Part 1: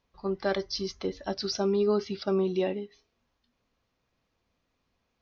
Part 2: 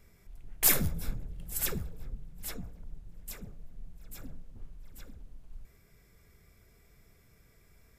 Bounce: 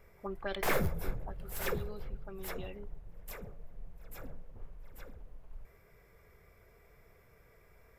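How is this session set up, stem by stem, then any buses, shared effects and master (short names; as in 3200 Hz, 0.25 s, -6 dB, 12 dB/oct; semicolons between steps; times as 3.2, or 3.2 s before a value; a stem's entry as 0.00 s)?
0.73 s -11.5 dB -> 1.47 s -21.5 dB -> 2.59 s -21.5 dB -> 2.87 s -11 dB, 0.00 s, no send, envelope low-pass 480–3500 Hz up, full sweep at -22.5 dBFS
-1.5 dB, 0.00 s, no send, graphic EQ 250/500/1000/2000/4000/8000 Hz -5/+9/+6/+4/-4/-7 dB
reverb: off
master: slew limiter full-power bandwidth 99 Hz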